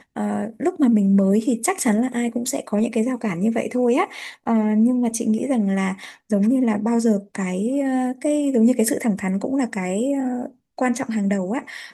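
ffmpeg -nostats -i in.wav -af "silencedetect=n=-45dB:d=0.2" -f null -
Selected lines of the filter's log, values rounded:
silence_start: 10.51
silence_end: 10.78 | silence_duration: 0.27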